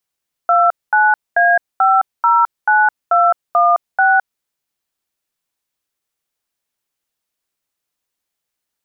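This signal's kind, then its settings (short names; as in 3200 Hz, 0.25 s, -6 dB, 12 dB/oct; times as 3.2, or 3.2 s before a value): DTMF "29A509216", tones 0.213 s, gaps 0.224 s, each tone -11.5 dBFS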